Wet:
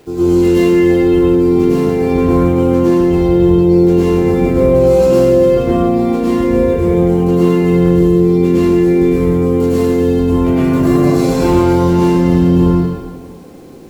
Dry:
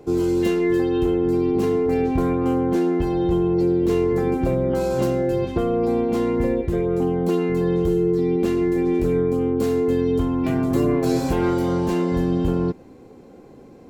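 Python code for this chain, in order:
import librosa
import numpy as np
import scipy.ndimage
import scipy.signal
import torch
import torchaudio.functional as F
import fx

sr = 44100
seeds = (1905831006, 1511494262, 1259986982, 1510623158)

y = fx.rev_plate(x, sr, seeds[0], rt60_s=1.4, hf_ratio=0.95, predelay_ms=90, drr_db=-9.0)
y = fx.quant_dither(y, sr, seeds[1], bits=8, dither='none')
y = y * librosa.db_to_amplitude(-1.0)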